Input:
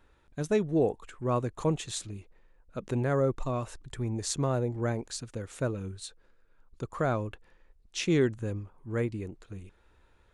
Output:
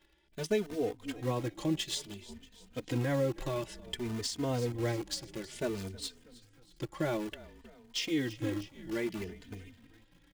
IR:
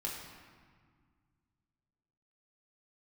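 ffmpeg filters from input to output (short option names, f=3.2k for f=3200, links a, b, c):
-filter_complex "[0:a]equalizer=f=315:t=o:w=0.33:g=10,equalizer=f=1.25k:t=o:w=0.33:g=-12,equalizer=f=2k:t=o:w=0.33:g=8,equalizer=f=3.15k:t=o:w=0.33:g=12,equalizer=f=5k:t=o:w=0.33:g=10,asplit=6[a][b][c][d][e][f];[b]adelay=318,afreqshift=-44,volume=-18.5dB[g];[c]adelay=636,afreqshift=-88,volume=-23.5dB[h];[d]adelay=954,afreqshift=-132,volume=-28.6dB[i];[e]adelay=1272,afreqshift=-176,volume=-33.6dB[j];[f]adelay=1590,afreqshift=-220,volume=-38.6dB[k];[a][g][h][i][j][k]amix=inputs=6:normalize=0,asplit=2[l][m];[m]acrusher=bits=6:dc=4:mix=0:aa=0.000001,volume=-5dB[n];[l][n]amix=inputs=2:normalize=0,lowshelf=f=420:g=-4,alimiter=limit=-17.5dB:level=0:latency=1:release=195,asplit=2[o][p];[p]adelay=3.1,afreqshift=0.57[q];[o][q]amix=inputs=2:normalize=1,volume=-2.5dB"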